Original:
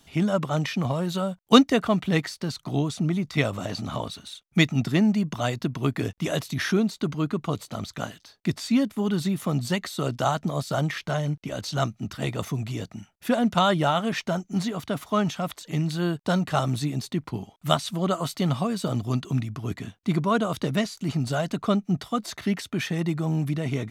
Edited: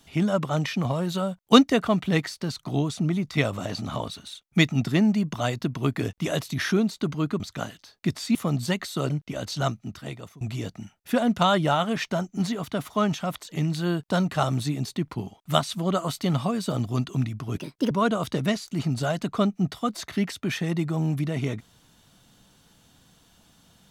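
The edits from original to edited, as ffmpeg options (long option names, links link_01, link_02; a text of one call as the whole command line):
ffmpeg -i in.wav -filter_complex "[0:a]asplit=7[link_01][link_02][link_03][link_04][link_05][link_06][link_07];[link_01]atrim=end=7.402[link_08];[link_02]atrim=start=7.808:end=8.762[link_09];[link_03]atrim=start=9.368:end=10.122[link_10];[link_04]atrim=start=11.258:end=12.57,asetpts=PTS-STARTPTS,afade=type=out:start_time=0.502:duration=0.81:silence=0.0630957[link_11];[link_05]atrim=start=12.57:end=19.734,asetpts=PTS-STARTPTS,afade=type=in:duration=0.004:curve=hsin:silence=0.0630957[link_12];[link_06]atrim=start=19.73:end=20.2,asetpts=PTS-STARTPTS,asetrate=61740,aresample=44100,atrim=end_sample=14805,asetpts=PTS-STARTPTS[link_13];[link_07]atrim=start=20.196[link_14];[link_08][link_09]acrossfade=duration=0.004:curve1=hsin:curve2=hsin[link_15];[link_15][link_10]acrossfade=duration=0.004:curve1=hsin:curve2=hsin[link_16];[link_11][link_12]concat=n=2:v=0:a=1[link_17];[link_16][link_17]acrossfade=duration=0.004:curve1=hsin:curve2=hsin[link_18];[link_18][link_13]acrossfade=duration=0.004:curve1=hsin:curve2=hsin[link_19];[link_19][link_14]acrossfade=duration=0.004:curve1=hsin:curve2=hsin" out.wav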